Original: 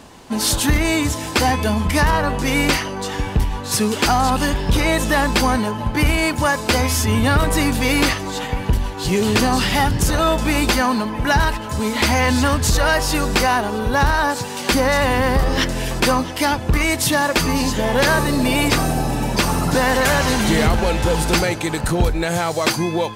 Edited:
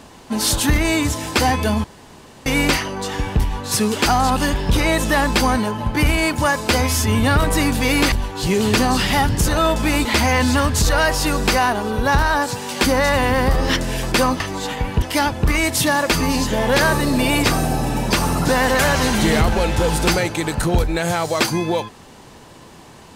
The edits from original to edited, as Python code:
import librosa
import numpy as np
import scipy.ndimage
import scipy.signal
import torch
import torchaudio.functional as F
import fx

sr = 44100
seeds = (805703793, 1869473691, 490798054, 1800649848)

y = fx.edit(x, sr, fx.room_tone_fill(start_s=1.84, length_s=0.62),
    fx.move(start_s=8.12, length_s=0.62, to_s=16.28),
    fx.cut(start_s=10.67, length_s=1.26), tone=tone)